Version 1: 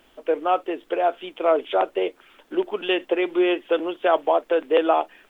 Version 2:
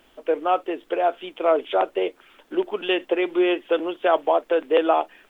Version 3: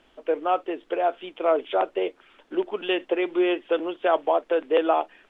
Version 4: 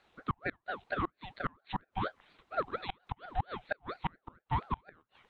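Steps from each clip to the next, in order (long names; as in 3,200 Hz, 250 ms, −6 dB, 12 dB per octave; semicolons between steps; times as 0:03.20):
no processing that can be heard
high-frequency loss of the air 61 metres; level −2 dB
gate with flip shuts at −14 dBFS, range −33 dB; ring modulator whose carrier an LFO sweeps 740 Hz, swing 50%, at 4.3 Hz; level −5.5 dB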